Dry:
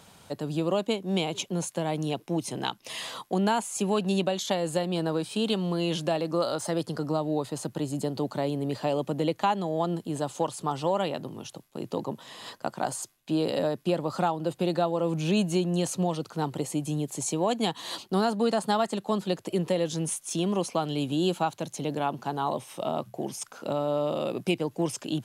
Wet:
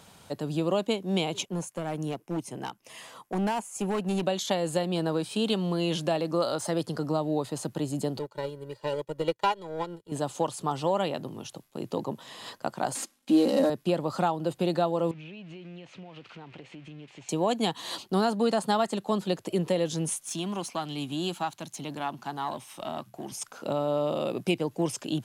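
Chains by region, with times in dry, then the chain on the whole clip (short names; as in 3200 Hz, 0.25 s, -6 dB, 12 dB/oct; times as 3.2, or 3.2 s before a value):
1.45–4.23 bell 3900 Hz -8.5 dB 0.65 oct + overloaded stage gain 23.5 dB + upward expander, over -40 dBFS
8.19–10.12 power-law curve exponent 1.4 + comb 2.1 ms, depth 94% + upward expander, over -41 dBFS
12.95–13.7 CVSD 64 kbps + resonant low shelf 160 Hz -10 dB, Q 3 + comb 3.7 ms, depth 60%
15.11–17.29 switching spikes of -23.5 dBFS + ladder low-pass 3000 Hz, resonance 50% + compressor 12:1, threshold -40 dBFS
20.26–23.32 half-wave gain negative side -3 dB + HPF 180 Hz 6 dB/oct + bell 480 Hz -10 dB 0.71 oct
whole clip: dry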